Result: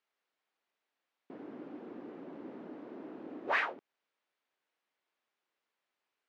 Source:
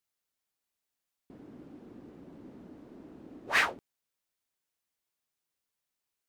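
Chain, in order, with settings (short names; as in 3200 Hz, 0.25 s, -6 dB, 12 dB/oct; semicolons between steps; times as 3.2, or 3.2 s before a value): compressor 5:1, threshold -36 dBFS, peak gain reduction 13.5 dB; BPF 320–2700 Hz; gain +7.5 dB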